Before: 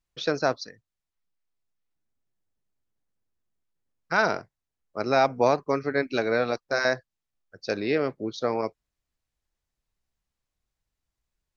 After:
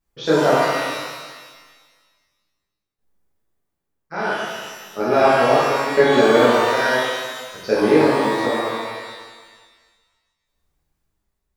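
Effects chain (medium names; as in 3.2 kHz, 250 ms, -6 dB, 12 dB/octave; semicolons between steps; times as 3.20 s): tremolo saw down 0.67 Hz, depth 90%; peaking EQ 4.1 kHz -7.5 dB 2.4 oct; pitch-shifted reverb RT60 1.5 s, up +12 st, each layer -8 dB, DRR -9.5 dB; trim +4 dB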